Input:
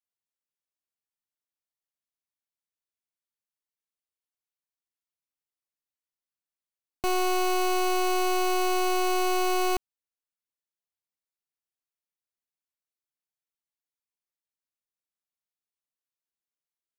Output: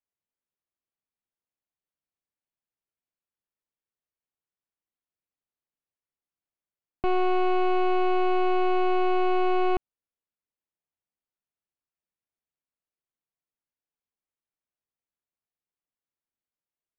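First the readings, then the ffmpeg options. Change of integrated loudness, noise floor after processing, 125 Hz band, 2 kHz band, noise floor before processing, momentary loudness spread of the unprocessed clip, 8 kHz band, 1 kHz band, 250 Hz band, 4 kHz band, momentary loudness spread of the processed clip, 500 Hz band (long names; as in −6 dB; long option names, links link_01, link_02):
+1.0 dB, below −85 dBFS, can't be measured, −2.5 dB, below −85 dBFS, 4 LU, below −30 dB, +0.5 dB, +3.0 dB, −8.0 dB, 4 LU, +3.0 dB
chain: -af "lowpass=frequency=3100:width=0.5412,lowpass=frequency=3100:width=1.3066,tiltshelf=frequency=970:gain=4"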